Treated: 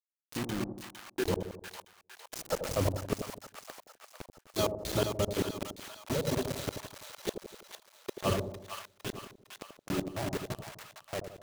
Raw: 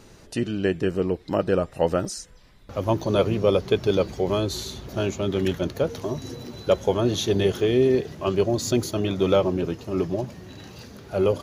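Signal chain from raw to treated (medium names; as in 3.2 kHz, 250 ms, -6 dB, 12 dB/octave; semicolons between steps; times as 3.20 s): backward echo that repeats 173 ms, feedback 59%, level -1.5 dB; reverb removal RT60 1.5 s; de-hum 356.4 Hz, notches 36; level held to a coarse grid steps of 11 dB; inverted gate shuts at -22 dBFS, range -41 dB; random-step tremolo 1.2 Hz, depth 65%; inverted gate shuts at -23 dBFS, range -29 dB; bit crusher 7-bit; on a send: two-band feedback delay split 780 Hz, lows 84 ms, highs 457 ms, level -7 dB; on the sum: trim +6.5 dB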